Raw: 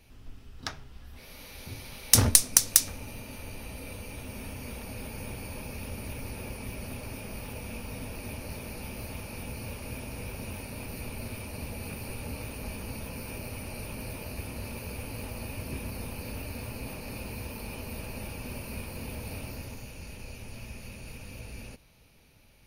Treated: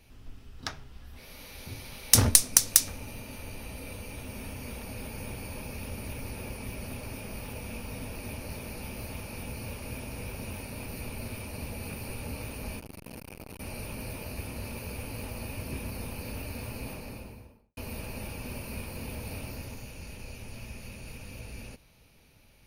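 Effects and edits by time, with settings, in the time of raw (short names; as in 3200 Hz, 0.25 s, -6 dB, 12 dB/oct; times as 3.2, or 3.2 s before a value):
12.79–13.6 core saturation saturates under 640 Hz
16.82–17.77 studio fade out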